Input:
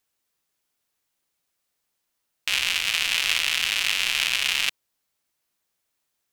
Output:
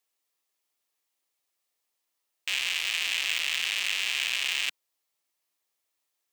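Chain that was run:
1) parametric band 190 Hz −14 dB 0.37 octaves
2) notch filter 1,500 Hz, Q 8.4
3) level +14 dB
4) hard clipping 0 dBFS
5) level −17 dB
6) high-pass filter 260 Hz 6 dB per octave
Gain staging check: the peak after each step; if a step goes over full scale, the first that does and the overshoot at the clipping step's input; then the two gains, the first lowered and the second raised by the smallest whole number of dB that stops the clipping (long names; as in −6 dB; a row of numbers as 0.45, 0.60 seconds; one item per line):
−4.5, −4.5, +9.5, 0.0, −17.0, −16.0 dBFS
step 3, 9.5 dB
step 3 +4 dB, step 5 −7 dB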